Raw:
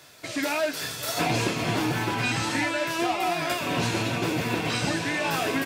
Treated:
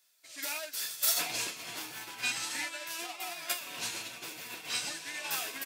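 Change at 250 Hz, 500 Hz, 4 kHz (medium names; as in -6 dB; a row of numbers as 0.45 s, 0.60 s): -24.0 dB, -19.0 dB, -5.0 dB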